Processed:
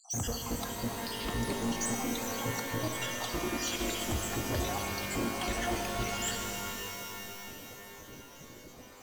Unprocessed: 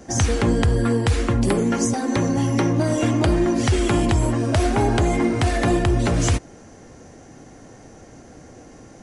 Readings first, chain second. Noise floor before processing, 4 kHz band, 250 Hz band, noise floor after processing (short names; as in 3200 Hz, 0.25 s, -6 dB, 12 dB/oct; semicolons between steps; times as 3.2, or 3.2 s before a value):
-45 dBFS, -5.0 dB, -16.5 dB, -51 dBFS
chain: random spectral dropouts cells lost 69%; band shelf 4900 Hz +8.5 dB; soft clip -23.5 dBFS, distortion -7 dB; notch 5300 Hz, Q 8.7; shimmer reverb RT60 3.7 s, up +12 st, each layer -2 dB, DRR 3 dB; gain -7 dB